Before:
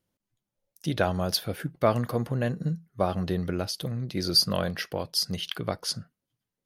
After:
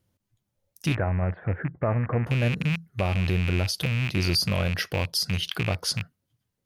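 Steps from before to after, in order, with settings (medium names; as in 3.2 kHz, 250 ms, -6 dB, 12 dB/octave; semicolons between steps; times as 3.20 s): rattle on loud lows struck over -35 dBFS, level -19 dBFS; peaking EQ 88 Hz +11.5 dB 1.1 oct; peak limiter -19 dBFS, peak gain reduction 10 dB; 0.95–2.27 s: elliptic low-pass 1.9 kHz, stop band 70 dB; trim +4 dB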